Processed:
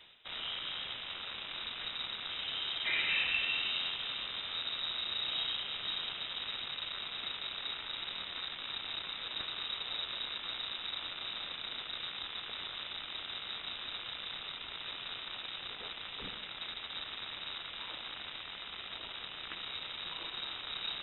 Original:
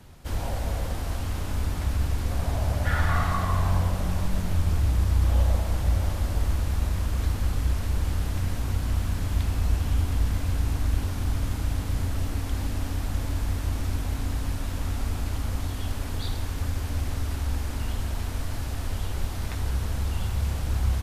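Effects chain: rattle on loud lows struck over -30 dBFS, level -33 dBFS; high-pass 480 Hz 6 dB/octave; distance through air 76 m; in parallel at -6 dB: bit crusher 6-bit; on the sum: frequency inversion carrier 3.8 kHz; reverse; upward compressor, threshold -37 dBFS; reverse; trim -5.5 dB

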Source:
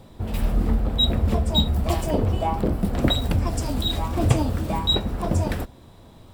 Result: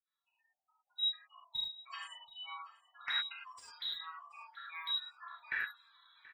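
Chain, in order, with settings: fade-in on the opening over 1.54 s; spectral gate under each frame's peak -25 dB strong; steep high-pass 1.5 kHz 48 dB/octave; peaking EQ 2.3 kHz -5 dB 1.4 oct; in parallel at +0.5 dB: peak limiter -24.5 dBFS, peak gain reduction 9 dB; on the sum: compression 16:1, threshold -28 dBFS, peak gain reduction 12.5 dB; wavefolder -23.5 dBFS; distance through air 440 m; feedback delay 730 ms, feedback 40%, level -21 dB; gated-style reverb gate 130 ms flat, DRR -6 dB; trim +1 dB

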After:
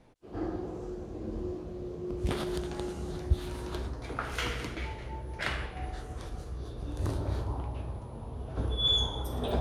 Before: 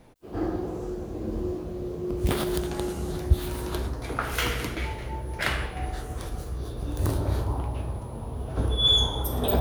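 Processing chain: low-pass 8 kHz 12 dB/octave; trim -6 dB

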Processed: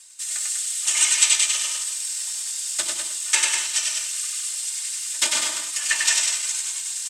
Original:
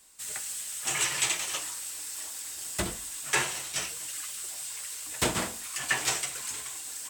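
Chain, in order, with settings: chunks repeated in reverse 102 ms, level -9 dB; comb 3.3 ms, depth 76%; vibrato 7 Hz 29 cents; frequency weighting ITU-R 468; on a send: loudspeakers at several distances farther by 33 m -2 dB, 68 m -5 dB; on the sum: transient shaper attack +3 dB, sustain -3 dB; reverse; upward compressor, threshold -23 dBFS; reverse; trim -6 dB

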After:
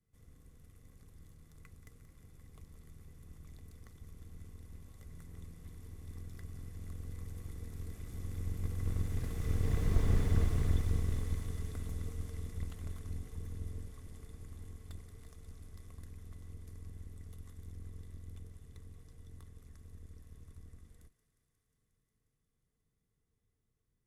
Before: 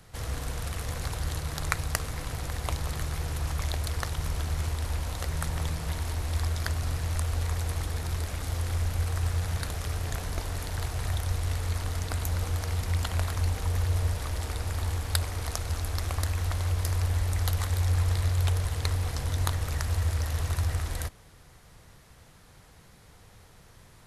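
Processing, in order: octave divider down 2 oct, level +1 dB; Doppler pass-by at 10.14 s, 14 m/s, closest 4.4 m; graphic EQ 125/250/500/1000/2000/4000 Hz +3/+5/-8/-10/-4/-9 dB; in parallel at -7.5 dB: Schmitt trigger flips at -30.5 dBFS; on the sum: small resonant body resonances 450/1100/2000/3500 Hz, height 12 dB, ringing for 40 ms; on a send: thinning echo 179 ms, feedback 83%, high-pass 670 Hz, level -15.5 dB; on the sum: slew-rate limiter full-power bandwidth 13 Hz; trim +1.5 dB

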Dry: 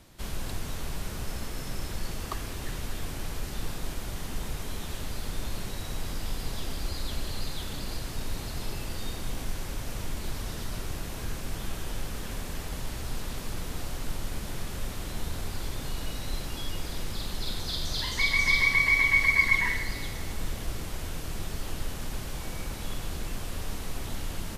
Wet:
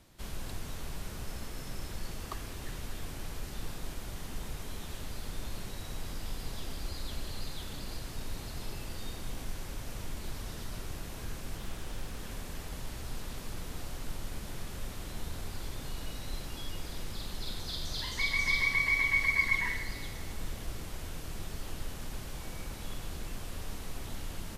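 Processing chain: 11.57–12.19 s: loudspeaker Doppler distortion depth 0.29 ms; trim -5.5 dB

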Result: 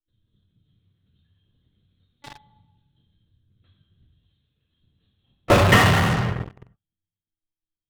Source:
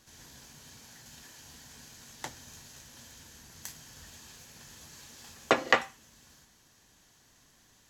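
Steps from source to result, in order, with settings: expander on every frequency bin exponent 2; 4.07–4.81 s: high-pass 270 Hz 6 dB/octave; LPC vocoder at 8 kHz pitch kept; reverberation RT60 1.1 s, pre-delay 3 ms, DRR -1.5 dB; in parallel at -6 dB: fuzz box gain 41 dB, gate -47 dBFS

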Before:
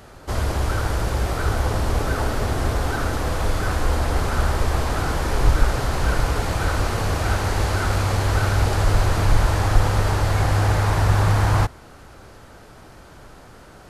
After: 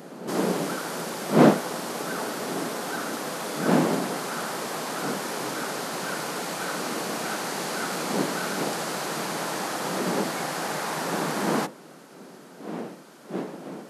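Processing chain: wind noise 410 Hz -23 dBFS; brick-wall FIR high-pass 150 Hz; treble shelf 4.3 kHz +7.5 dB; trim -5.5 dB

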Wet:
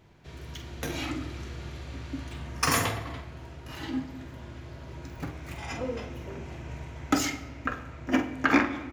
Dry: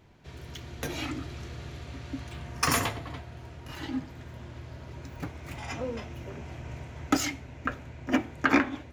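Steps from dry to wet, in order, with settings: doubling 46 ms -9 dB; on a send: reverberation RT60 1.2 s, pre-delay 6 ms, DRR 10 dB

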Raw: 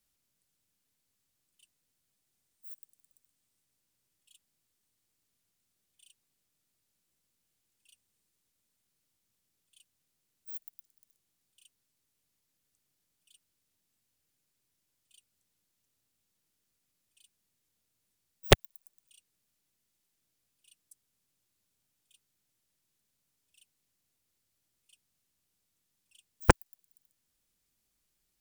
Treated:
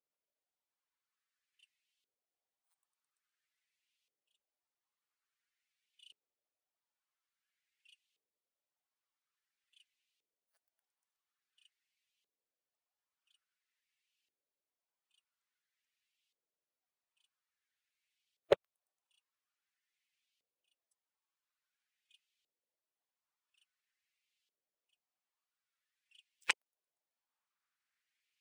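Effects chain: coarse spectral quantiser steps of 15 dB; tilt shelf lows -6.5 dB, about 780 Hz; LFO band-pass saw up 0.49 Hz 440–3100 Hz

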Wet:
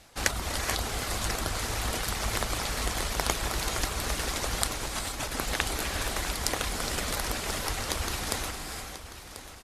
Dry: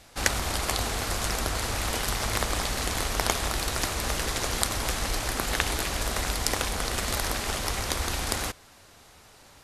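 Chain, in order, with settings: reverb removal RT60 0.63 s; 4.75–5.36 s: compressor with a negative ratio -34 dBFS, ratio -0.5; feedback delay 1039 ms, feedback 33%, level -13 dB; gated-style reverb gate 500 ms rising, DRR 5 dB; trim -2 dB; Opus 64 kbps 48 kHz

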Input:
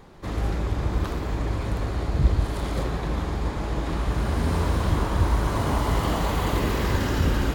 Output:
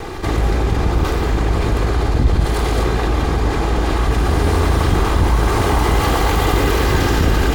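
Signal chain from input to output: comb filter that takes the minimum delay 2.5 ms; level flattener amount 50%; trim +4.5 dB

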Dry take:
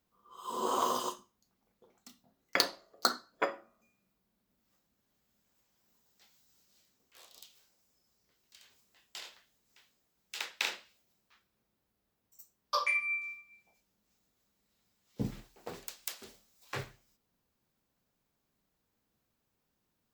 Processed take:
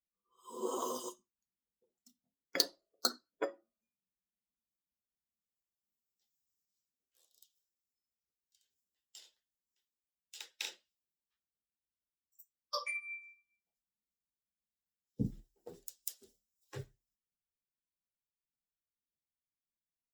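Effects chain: expander on every frequency bin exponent 1.5; high-order bell 1.5 kHz -9 dB 2.6 oct; trim +1 dB

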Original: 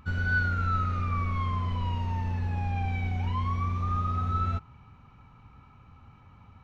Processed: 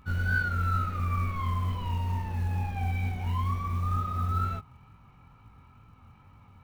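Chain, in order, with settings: chorus 2.2 Hz, delay 18 ms, depth 5.9 ms; short-mantissa float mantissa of 4-bit; trim +1.5 dB

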